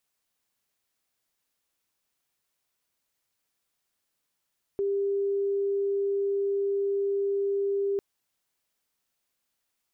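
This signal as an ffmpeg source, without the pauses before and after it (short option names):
-f lavfi -i "aevalsrc='0.0631*sin(2*PI*398*t)':d=3.2:s=44100"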